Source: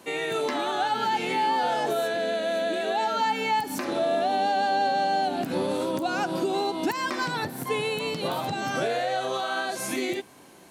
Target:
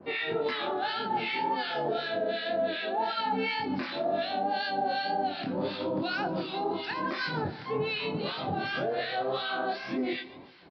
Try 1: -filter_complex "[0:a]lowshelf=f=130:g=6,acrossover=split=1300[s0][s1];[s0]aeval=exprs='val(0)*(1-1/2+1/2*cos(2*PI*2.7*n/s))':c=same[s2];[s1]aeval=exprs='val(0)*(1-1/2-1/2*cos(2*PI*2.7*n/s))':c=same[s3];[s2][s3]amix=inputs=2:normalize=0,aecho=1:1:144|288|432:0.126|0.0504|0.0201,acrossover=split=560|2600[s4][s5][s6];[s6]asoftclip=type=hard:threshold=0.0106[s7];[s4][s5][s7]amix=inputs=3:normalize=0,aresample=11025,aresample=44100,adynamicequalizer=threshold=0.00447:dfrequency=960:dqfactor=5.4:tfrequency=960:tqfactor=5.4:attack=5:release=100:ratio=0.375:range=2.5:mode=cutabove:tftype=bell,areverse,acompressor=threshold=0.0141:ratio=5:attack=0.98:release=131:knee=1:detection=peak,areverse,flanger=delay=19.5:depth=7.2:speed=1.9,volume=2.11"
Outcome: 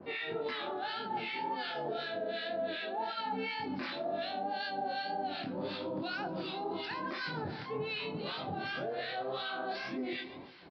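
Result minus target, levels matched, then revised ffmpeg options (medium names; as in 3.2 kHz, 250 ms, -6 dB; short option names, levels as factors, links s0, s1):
compression: peak gain reduction +7 dB
-filter_complex "[0:a]lowshelf=f=130:g=6,acrossover=split=1300[s0][s1];[s0]aeval=exprs='val(0)*(1-1/2+1/2*cos(2*PI*2.7*n/s))':c=same[s2];[s1]aeval=exprs='val(0)*(1-1/2-1/2*cos(2*PI*2.7*n/s))':c=same[s3];[s2][s3]amix=inputs=2:normalize=0,aecho=1:1:144|288|432:0.126|0.0504|0.0201,acrossover=split=560|2600[s4][s5][s6];[s6]asoftclip=type=hard:threshold=0.0106[s7];[s4][s5][s7]amix=inputs=3:normalize=0,aresample=11025,aresample=44100,adynamicequalizer=threshold=0.00447:dfrequency=960:dqfactor=5.4:tfrequency=960:tqfactor=5.4:attack=5:release=100:ratio=0.375:range=2.5:mode=cutabove:tftype=bell,areverse,acompressor=threshold=0.0376:ratio=5:attack=0.98:release=131:knee=1:detection=peak,areverse,flanger=delay=19.5:depth=7.2:speed=1.9,volume=2.11"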